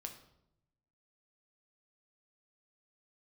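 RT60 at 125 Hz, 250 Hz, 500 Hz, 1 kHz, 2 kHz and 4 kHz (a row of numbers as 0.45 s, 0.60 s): 1.3 s, 1.1 s, 0.85 s, 0.70 s, 0.60 s, 0.55 s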